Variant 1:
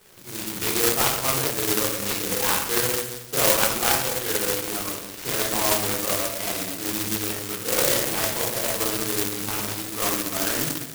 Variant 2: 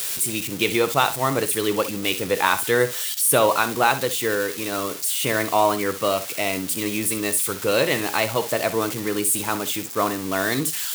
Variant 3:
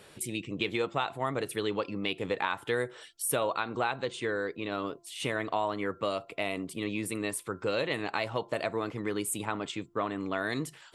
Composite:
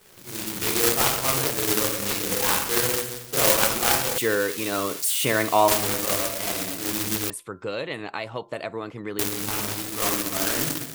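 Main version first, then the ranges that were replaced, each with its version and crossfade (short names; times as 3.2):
1
4.18–5.68 from 2
7.3–9.19 from 3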